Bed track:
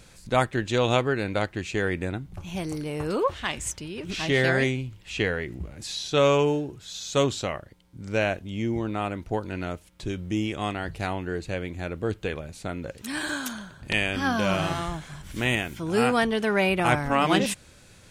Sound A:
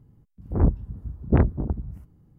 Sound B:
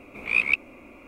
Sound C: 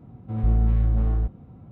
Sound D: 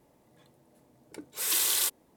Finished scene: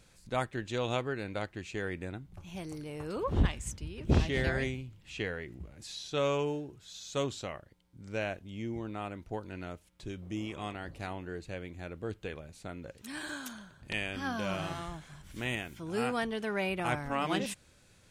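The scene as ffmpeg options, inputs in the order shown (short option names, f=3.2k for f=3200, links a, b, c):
-filter_complex "[0:a]volume=-10dB[a];[2:a]lowpass=f=1.1k:w=0.5412,lowpass=f=1.1k:w=1.3066[b];[1:a]atrim=end=2.38,asetpts=PTS-STARTPTS,volume=-7.5dB,afade=t=in:d=0.004:c=hsin,afade=t=out:st=2.376:d=0.004:c=hsin,adelay=2770[c];[b]atrim=end=1.07,asetpts=PTS-STARTPTS,volume=-11dB,afade=t=in:d=0.004:c=hsin,afade=t=out:st=1.066:d=0.004:c=hsin,adelay=10220[d];[a][c][d]amix=inputs=3:normalize=0"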